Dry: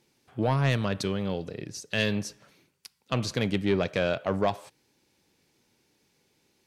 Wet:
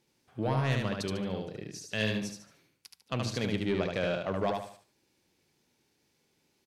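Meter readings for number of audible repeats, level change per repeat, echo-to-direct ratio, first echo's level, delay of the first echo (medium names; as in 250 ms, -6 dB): 4, -9.5 dB, -3.0 dB, -3.5 dB, 74 ms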